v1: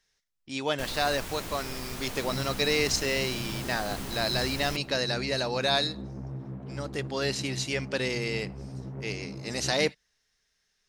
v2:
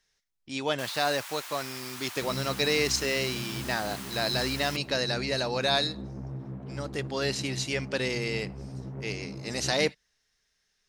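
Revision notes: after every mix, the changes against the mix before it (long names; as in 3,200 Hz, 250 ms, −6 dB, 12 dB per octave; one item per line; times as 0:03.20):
first sound: add high-pass filter 910 Hz 24 dB per octave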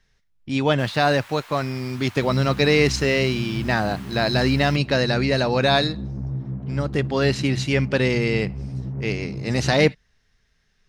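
speech +8.0 dB
master: add bass and treble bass +11 dB, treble −10 dB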